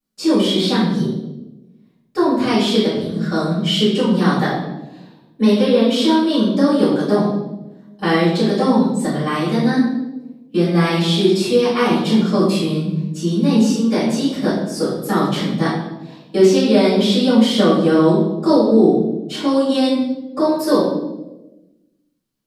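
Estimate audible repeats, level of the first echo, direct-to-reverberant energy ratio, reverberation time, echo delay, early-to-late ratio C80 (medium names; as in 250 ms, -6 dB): no echo, no echo, -12.5 dB, 1.1 s, no echo, 4.0 dB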